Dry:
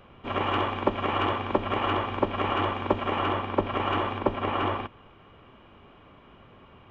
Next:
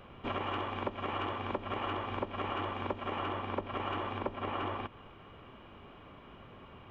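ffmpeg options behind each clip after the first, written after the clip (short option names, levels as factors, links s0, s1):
-af "acompressor=threshold=0.0224:ratio=6"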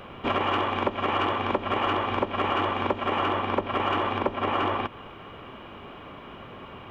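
-filter_complex "[0:a]lowshelf=f=130:g=-7.5,asplit=2[s0][s1];[s1]asoftclip=type=hard:threshold=0.0282,volume=0.355[s2];[s0][s2]amix=inputs=2:normalize=0,volume=2.66"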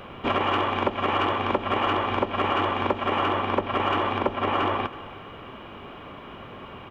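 -af "aecho=1:1:325:0.119,volume=1.19"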